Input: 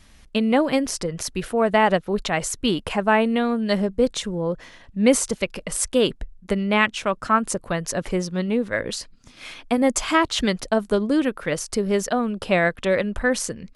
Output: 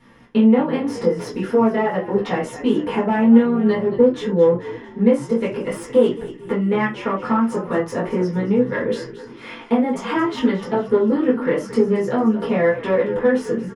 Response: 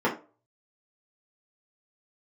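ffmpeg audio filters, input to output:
-filter_complex "[0:a]acompressor=threshold=-25dB:ratio=5,flanger=delay=15.5:depth=6.4:speed=0.47,aeval=exprs='clip(val(0),-1,0.0473)':c=same,asplit=6[a][b][c][d][e][f];[b]adelay=224,afreqshift=-58,volume=-14dB[g];[c]adelay=448,afreqshift=-116,volume=-19.8dB[h];[d]adelay=672,afreqshift=-174,volume=-25.7dB[i];[e]adelay=896,afreqshift=-232,volume=-31.5dB[j];[f]adelay=1120,afreqshift=-290,volume=-37.4dB[k];[a][g][h][i][j][k]amix=inputs=6:normalize=0[l];[1:a]atrim=start_sample=2205,atrim=end_sample=3969[m];[l][m]afir=irnorm=-1:irlink=0,volume=-4dB"

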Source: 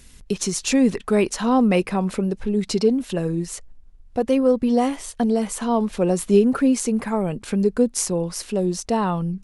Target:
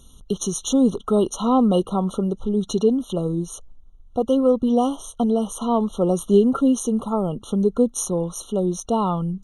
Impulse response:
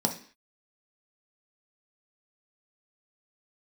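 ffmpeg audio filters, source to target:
-af "equalizer=f=1.6k:w=1.5:g=3,afftfilt=real='re*eq(mod(floor(b*sr/1024/1400),2),0)':imag='im*eq(mod(floor(b*sr/1024/1400),2),0)':win_size=1024:overlap=0.75"

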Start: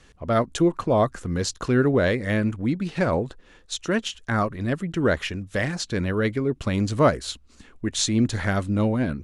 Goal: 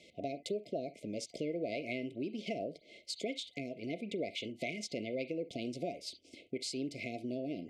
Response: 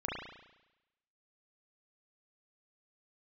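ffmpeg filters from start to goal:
-filter_complex "[0:a]asplit=2[a][b];[1:a]atrim=start_sample=2205,atrim=end_sample=3969,highshelf=f=2.6k:g=9.5[c];[b][c]afir=irnorm=-1:irlink=0,volume=-16.5dB[d];[a][d]amix=inputs=2:normalize=0,acompressor=threshold=-32dB:ratio=5,afftfilt=real='re*(1-between(b*sr/4096,600,1700))':imag='im*(1-between(b*sr/4096,600,1700))':win_size=4096:overlap=0.75,highpass=210,lowpass=4.3k,asetrate=52920,aresample=44100,volume=-2dB"

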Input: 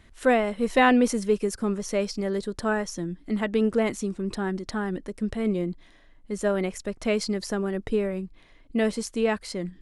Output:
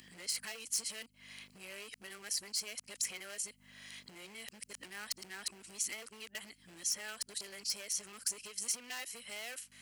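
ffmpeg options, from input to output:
-filter_complex "[0:a]areverse,aeval=exprs='val(0)+0.0126*(sin(2*PI*50*n/s)+sin(2*PI*2*50*n/s)/2+sin(2*PI*3*50*n/s)/3+sin(2*PI*4*50*n/s)/4+sin(2*PI*5*50*n/s)/5)':c=same,acompressor=threshold=-34dB:ratio=12,volume=34.5dB,asoftclip=hard,volume=-34.5dB,equalizer=f=2.8k:t=o:w=1.3:g=5,acrossover=split=120|1900|7100[a][b][c][d];[a]acompressor=threshold=-47dB:ratio=4[e];[b]acompressor=threshold=-44dB:ratio=4[f];[c]acompressor=threshold=-51dB:ratio=4[g];[d]acompressor=threshold=-55dB:ratio=4[h];[e][f][g][h]amix=inputs=4:normalize=0,aderivative,bandreject=f=3.6k:w=6.8,volume=15.5dB"

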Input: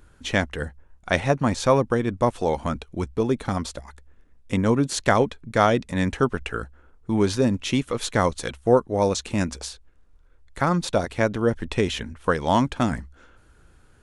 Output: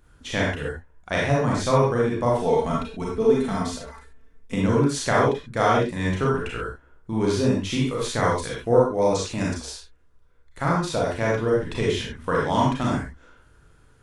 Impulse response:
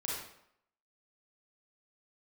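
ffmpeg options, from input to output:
-filter_complex "[0:a]asettb=1/sr,asplit=3[a][b][c];[a]atrim=end=2.334[d];[b]atrim=start=2.33:end=4.55,asetpts=PTS-STARTPTS,afade=t=in:d=0.004:c=qsin,afade=t=out:st=2.216:d=0.004:c=qsin,aecho=1:1:4.5:0.71,atrim=end_sample=97902[e];[c]atrim=start=4.546[f];[d][e]acrossfade=d=0.004:c1=hsin:c2=qsin[g];[g][f]acrossfade=d=0.004:c1=qsin:c2=hsin[h];[1:a]atrim=start_sample=2205,afade=t=out:st=0.19:d=0.01,atrim=end_sample=8820[i];[h][i]afir=irnorm=-1:irlink=0,volume=-2.5dB"

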